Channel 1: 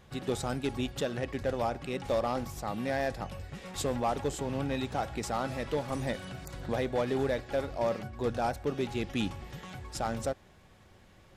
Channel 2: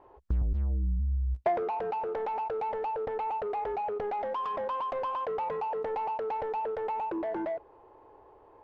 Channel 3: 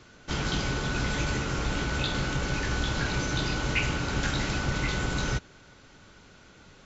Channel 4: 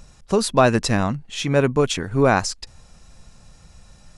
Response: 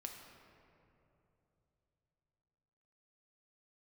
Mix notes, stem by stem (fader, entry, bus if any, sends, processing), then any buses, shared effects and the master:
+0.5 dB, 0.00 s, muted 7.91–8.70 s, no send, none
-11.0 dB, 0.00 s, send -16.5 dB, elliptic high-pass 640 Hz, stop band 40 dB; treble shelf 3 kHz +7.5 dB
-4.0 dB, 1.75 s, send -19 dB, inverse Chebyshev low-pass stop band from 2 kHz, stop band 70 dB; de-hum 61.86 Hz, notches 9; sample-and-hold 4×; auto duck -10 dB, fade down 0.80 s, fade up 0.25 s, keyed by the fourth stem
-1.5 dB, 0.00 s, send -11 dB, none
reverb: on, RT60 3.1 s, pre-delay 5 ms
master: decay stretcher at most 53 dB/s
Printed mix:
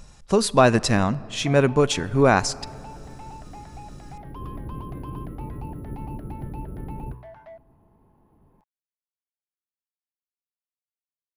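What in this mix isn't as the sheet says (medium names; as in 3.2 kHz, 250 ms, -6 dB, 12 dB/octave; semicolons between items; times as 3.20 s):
stem 1: muted; master: missing decay stretcher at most 53 dB/s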